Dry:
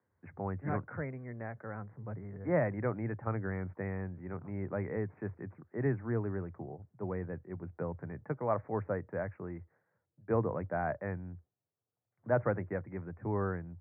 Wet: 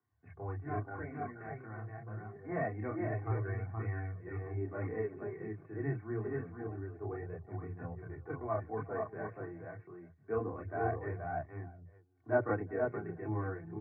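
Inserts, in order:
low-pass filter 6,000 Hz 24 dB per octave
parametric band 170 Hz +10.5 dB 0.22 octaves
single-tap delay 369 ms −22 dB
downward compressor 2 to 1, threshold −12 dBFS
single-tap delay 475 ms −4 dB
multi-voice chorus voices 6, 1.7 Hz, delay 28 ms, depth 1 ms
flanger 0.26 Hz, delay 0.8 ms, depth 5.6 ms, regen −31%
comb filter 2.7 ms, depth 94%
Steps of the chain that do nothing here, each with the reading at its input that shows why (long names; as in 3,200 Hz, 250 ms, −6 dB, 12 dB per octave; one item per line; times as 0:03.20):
low-pass filter 6,000 Hz: nothing at its input above 2,000 Hz
downward compressor, threshold −12 dBFS: peak of its input −14.5 dBFS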